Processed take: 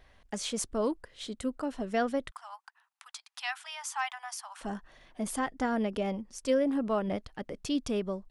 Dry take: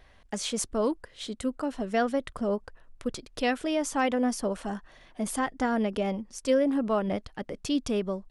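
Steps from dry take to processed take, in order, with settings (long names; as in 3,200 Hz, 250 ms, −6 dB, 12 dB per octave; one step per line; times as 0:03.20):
0:02.31–0:04.61: Butterworth high-pass 780 Hz 72 dB per octave
level −3 dB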